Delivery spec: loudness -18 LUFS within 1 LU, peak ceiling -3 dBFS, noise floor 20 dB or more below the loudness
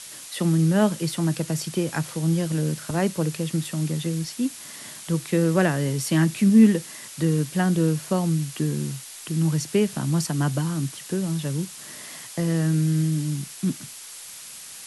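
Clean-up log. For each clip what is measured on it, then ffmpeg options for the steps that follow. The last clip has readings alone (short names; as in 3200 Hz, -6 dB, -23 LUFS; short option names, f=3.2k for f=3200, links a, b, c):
noise floor -41 dBFS; noise floor target -44 dBFS; loudness -24.0 LUFS; peak -6.0 dBFS; loudness target -18.0 LUFS
-> -af "afftdn=nr=6:nf=-41"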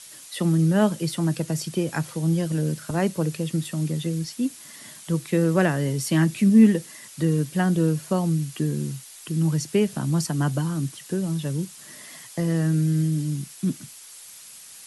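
noise floor -45 dBFS; loudness -24.0 LUFS; peak -6.0 dBFS; loudness target -18.0 LUFS
-> -af "volume=6dB,alimiter=limit=-3dB:level=0:latency=1"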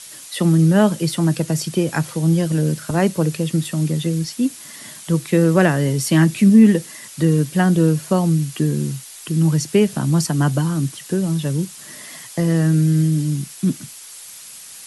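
loudness -18.0 LUFS; peak -3.0 dBFS; noise floor -39 dBFS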